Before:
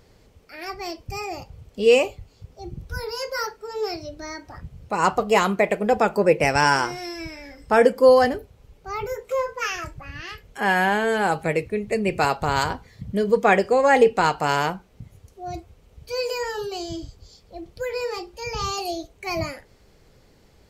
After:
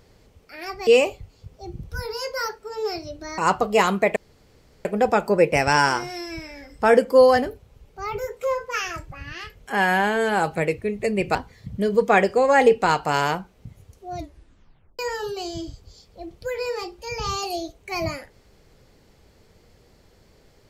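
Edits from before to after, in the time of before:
0.87–1.85 cut
4.36–4.95 cut
5.73 insert room tone 0.69 s
12.23–12.7 cut
15.51 tape stop 0.83 s

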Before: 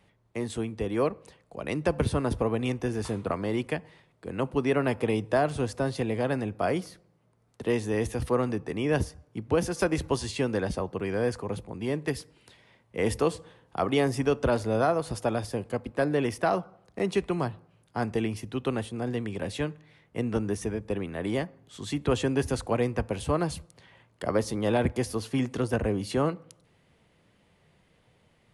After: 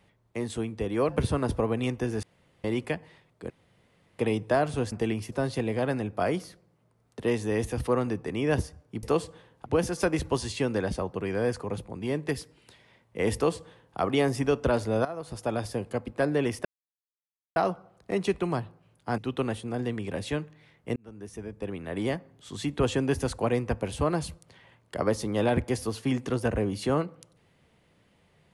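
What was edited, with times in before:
1.09–1.91 cut
3.05–3.46 room tone
4.32–5.01 room tone
13.14–13.77 copy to 9.45
14.84–15.43 fade in, from -16 dB
16.44 insert silence 0.91 s
18.06–18.46 move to 5.74
20.24–21.35 fade in

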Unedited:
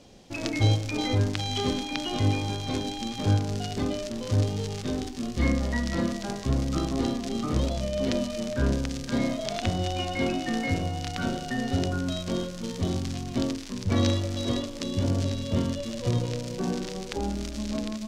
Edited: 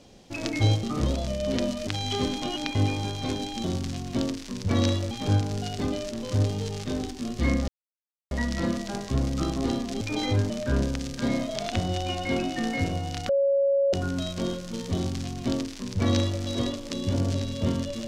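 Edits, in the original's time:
0.83–1.32 swap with 7.36–8.4
1.87–2.2 reverse
5.66 insert silence 0.63 s
11.19–11.83 bleep 555 Hz -19 dBFS
12.85–14.32 copy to 3.09

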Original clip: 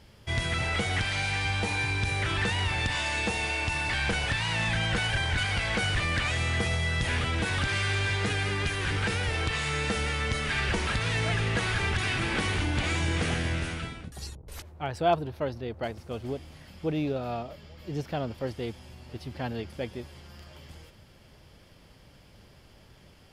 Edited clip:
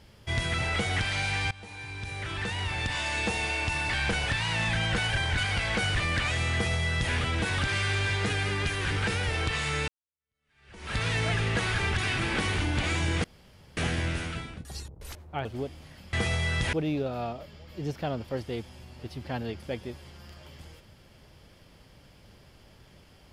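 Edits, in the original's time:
1.51–3.27 fade in, from -20.5 dB
6.53–7.13 copy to 16.83
9.88–10.97 fade in exponential
13.24 insert room tone 0.53 s
14.92–16.15 cut

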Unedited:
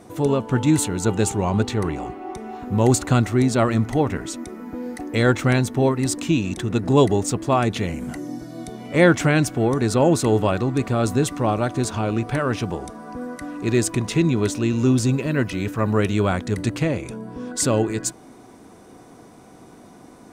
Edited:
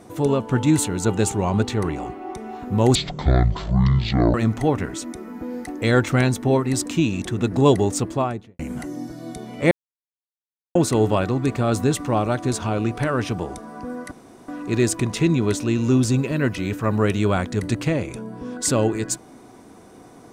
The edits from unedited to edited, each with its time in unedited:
2.95–3.66 speed 51%
7.33–7.91 studio fade out
9.03–10.07 mute
13.43 insert room tone 0.37 s

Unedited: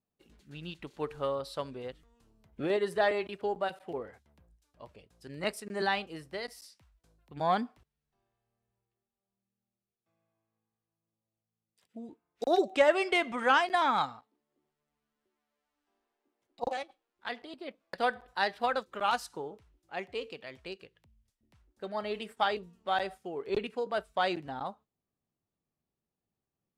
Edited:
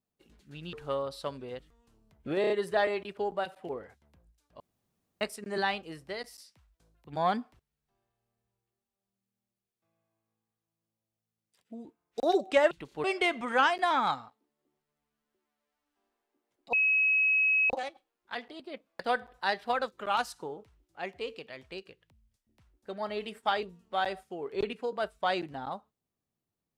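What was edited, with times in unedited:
0.73–1.06 move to 12.95
2.74 stutter 0.03 s, 4 plays
4.84–5.45 room tone
16.64 add tone 2560 Hz -22 dBFS 0.97 s

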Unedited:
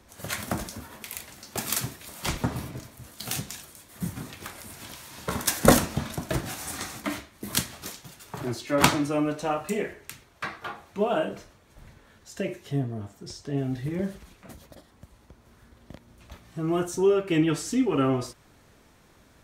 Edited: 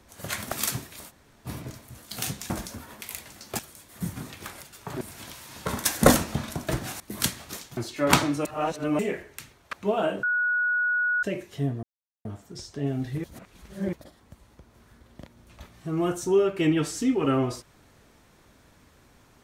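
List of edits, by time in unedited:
0.52–1.61 move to 3.59
2.18–2.56 room tone, crossfade 0.06 s
6.62–7.33 cut
8.1–8.48 move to 4.63
9.16–9.7 reverse
10.44–10.86 cut
11.36–12.36 bleep 1460 Hz -21.5 dBFS
12.96 insert silence 0.42 s
13.95–14.64 reverse

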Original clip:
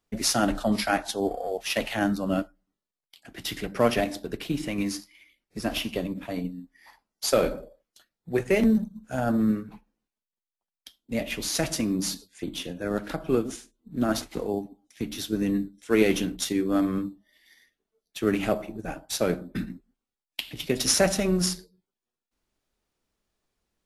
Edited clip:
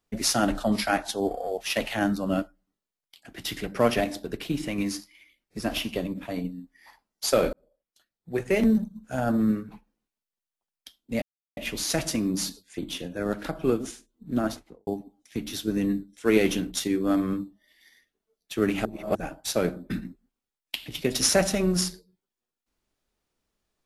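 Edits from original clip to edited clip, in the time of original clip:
7.53–8.69 fade in
11.22 insert silence 0.35 s
13.95–14.52 studio fade out
18.5–18.8 reverse

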